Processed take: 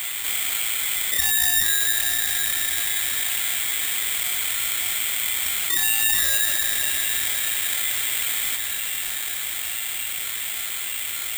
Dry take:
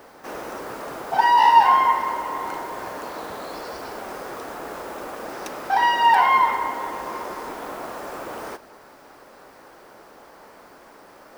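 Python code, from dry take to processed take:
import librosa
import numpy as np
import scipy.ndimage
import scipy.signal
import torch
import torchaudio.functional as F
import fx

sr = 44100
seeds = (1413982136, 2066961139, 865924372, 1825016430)

y = fx.halfwave_hold(x, sr)
y = fx.low_shelf(y, sr, hz=200.0, db=12.0)
y = fx.comb_fb(y, sr, f0_hz=660.0, decay_s=0.48, harmonics='all', damping=0.0, mix_pct=80)
y = fx.echo_diffused(y, sr, ms=572, feedback_pct=56, wet_db=-13.5)
y = fx.freq_invert(y, sr, carrier_hz=2700)
y = (np.kron(scipy.signal.resample_poly(y, 1, 8), np.eye(8)[0]) * 8)[:len(y)]
y = fx.env_flatten(y, sr, amount_pct=70)
y = y * 10.0 ** (-8.0 / 20.0)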